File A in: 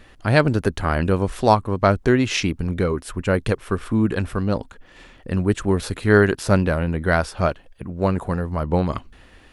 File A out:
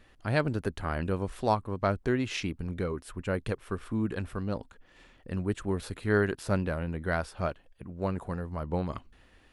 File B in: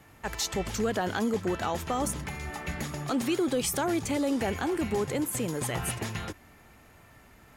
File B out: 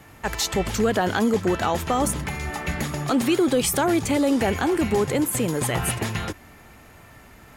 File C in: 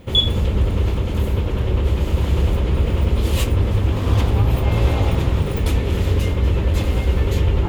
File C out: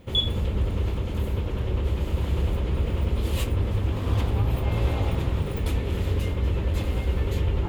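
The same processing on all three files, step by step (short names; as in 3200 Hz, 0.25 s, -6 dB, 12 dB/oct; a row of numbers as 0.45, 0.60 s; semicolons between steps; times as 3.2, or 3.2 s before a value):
dynamic EQ 5900 Hz, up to -3 dB, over -47 dBFS, Q 2; normalise peaks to -12 dBFS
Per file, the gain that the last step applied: -11.0, +7.5, -7.0 dB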